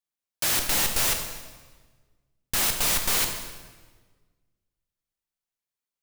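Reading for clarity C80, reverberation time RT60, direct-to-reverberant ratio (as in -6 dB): 8.0 dB, 1.4 s, 4.5 dB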